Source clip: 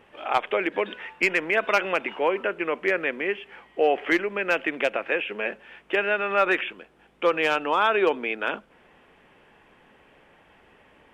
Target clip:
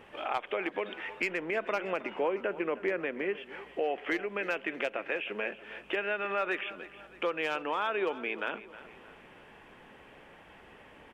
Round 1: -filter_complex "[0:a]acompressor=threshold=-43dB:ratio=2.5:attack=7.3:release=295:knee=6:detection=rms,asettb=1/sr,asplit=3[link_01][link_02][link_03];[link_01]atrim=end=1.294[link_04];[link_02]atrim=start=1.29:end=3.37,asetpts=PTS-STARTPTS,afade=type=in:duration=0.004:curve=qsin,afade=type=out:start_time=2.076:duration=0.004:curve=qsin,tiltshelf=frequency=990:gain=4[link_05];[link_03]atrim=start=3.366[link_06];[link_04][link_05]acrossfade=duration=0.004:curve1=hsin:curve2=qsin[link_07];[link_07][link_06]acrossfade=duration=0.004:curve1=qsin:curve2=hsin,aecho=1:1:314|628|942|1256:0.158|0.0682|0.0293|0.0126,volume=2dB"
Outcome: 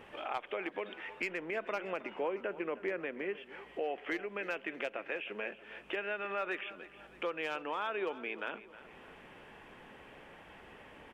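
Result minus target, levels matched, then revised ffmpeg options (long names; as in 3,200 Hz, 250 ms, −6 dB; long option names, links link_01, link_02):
downward compressor: peak gain reduction +5 dB
-filter_complex "[0:a]acompressor=threshold=-34.5dB:ratio=2.5:attack=7.3:release=295:knee=6:detection=rms,asettb=1/sr,asplit=3[link_01][link_02][link_03];[link_01]atrim=end=1.294[link_04];[link_02]atrim=start=1.29:end=3.37,asetpts=PTS-STARTPTS,afade=type=in:duration=0.004:curve=qsin,afade=type=out:start_time=2.076:duration=0.004:curve=qsin,tiltshelf=frequency=990:gain=4[link_05];[link_03]atrim=start=3.366[link_06];[link_04][link_05]acrossfade=duration=0.004:curve1=hsin:curve2=qsin[link_07];[link_07][link_06]acrossfade=duration=0.004:curve1=qsin:curve2=hsin,aecho=1:1:314|628|942|1256:0.158|0.0682|0.0293|0.0126,volume=2dB"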